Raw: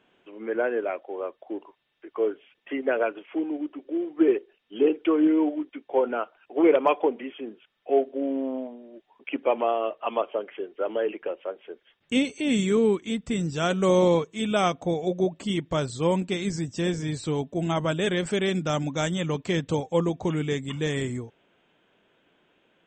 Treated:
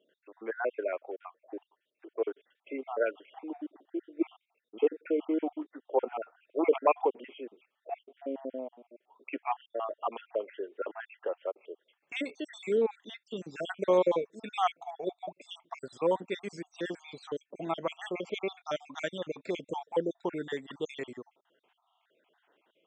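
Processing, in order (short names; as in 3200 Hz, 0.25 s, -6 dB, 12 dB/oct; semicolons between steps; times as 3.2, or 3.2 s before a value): random spectral dropouts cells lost 57%; BPF 440–6400 Hz; high shelf 3000 Hz -11.5 dB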